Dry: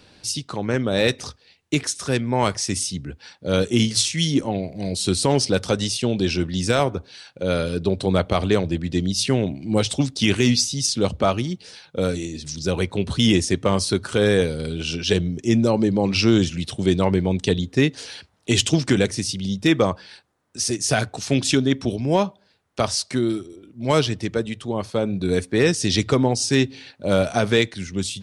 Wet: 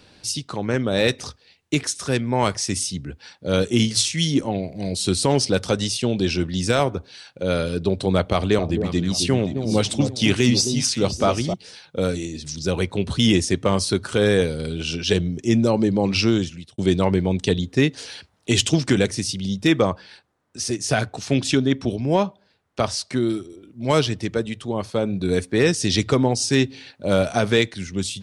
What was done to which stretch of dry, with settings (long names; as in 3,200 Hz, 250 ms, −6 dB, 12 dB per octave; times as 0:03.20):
0:08.32–0:11.54: delay that swaps between a low-pass and a high-pass 264 ms, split 900 Hz, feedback 52%, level −7 dB
0:16.17–0:16.78: fade out linear
0:19.81–0:23.21: high-shelf EQ 5,200 Hz −6 dB